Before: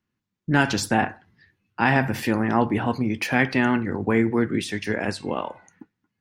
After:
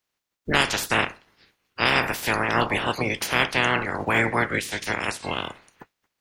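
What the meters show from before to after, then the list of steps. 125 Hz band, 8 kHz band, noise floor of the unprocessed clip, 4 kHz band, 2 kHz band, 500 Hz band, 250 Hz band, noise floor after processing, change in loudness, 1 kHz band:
−5.0 dB, +3.0 dB, −81 dBFS, +7.0 dB, +2.5 dB, −1.5 dB, −8.5 dB, −82 dBFS, −0.5 dB, +0.5 dB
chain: ceiling on every frequency bin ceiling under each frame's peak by 27 dB
level −1 dB

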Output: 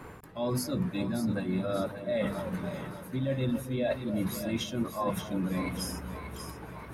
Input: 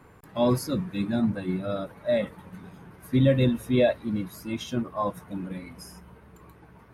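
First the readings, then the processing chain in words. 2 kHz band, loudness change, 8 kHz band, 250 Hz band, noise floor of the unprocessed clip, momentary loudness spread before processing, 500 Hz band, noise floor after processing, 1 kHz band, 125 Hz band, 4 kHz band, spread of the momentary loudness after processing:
−2.5 dB, −5.5 dB, +3.0 dB, −4.5 dB, −53 dBFS, 21 LU, −6.0 dB, −45 dBFS, −3.0 dB, −5.0 dB, −1.5 dB, 9 LU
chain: mains-hum notches 50/100/150/200/250 Hz
reversed playback
downward compressor 10 to 1, threshold −36 dBFS, peak gain reduction 20.5 dB
reversed playback
echo with a time of its own for lows and highs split 630 Hz, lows 273 ms, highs 584 ms, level −9 dB
level +8 dB

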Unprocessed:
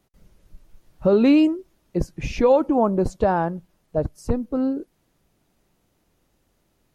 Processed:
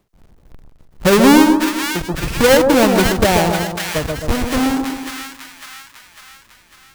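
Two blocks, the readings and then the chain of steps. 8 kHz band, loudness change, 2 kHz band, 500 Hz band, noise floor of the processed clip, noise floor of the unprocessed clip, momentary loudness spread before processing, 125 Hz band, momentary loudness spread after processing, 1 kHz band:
can't be measured, +7.0 dB, +17.5 dB, +5.5 dB, −50 dBFS, −68 dBFS, 14 LU, +7.0 dB, 17 LU, +8.5 dB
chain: each half-wave held at its own peak
echo with a time of its own for lows and highs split 1,200 Hz, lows 131 ms, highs 550 ms, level −4 dB
every ending faded ahead of time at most 120 dB per second
level +1.5 dB

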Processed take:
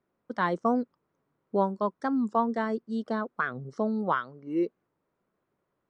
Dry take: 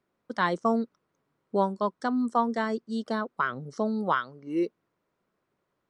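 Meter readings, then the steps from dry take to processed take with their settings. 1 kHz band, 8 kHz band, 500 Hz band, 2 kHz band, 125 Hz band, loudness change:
−1.5 dB, can't be measured, −0.5 dB, −1.5 dB, 0.0 dB, −0.5 dB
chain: high-shelf EQ 3,100 Hz −12 dB
wow of a warped record 45 rpm, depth 160 cents

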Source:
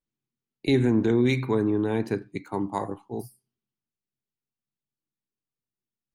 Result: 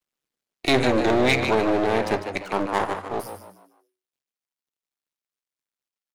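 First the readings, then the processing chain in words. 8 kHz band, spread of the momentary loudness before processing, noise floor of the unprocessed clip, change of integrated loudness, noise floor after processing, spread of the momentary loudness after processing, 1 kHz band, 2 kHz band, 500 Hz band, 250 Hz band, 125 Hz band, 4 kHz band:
+11.0 dB, 13 LU, below −85 dBFS, +2.5 dB, below −85 dBFS, 12 LU, +10.5 dB, +10.5 dB, +4.5 dB, −1.0 dB, −3.5 dB, +10.5 dB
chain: half-wave rectification
echo with shifted repeats 150 ms, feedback 33%, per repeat +93 Hz, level −10.5 dB
mid-hump overdrive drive 16 dB, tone 7,700 Hz, clips at −11.5 dBFS
level +4 dB

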